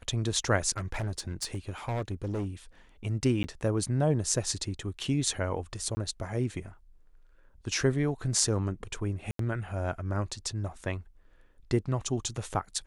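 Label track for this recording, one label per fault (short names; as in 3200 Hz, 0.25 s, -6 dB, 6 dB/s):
0.770000	2.460000	clipped -28 dBFS
3.430000	3.440000	gap 10 ms
5.950000	5.970000	gap 20 ms
9.310000	9.390000	gap 83 ms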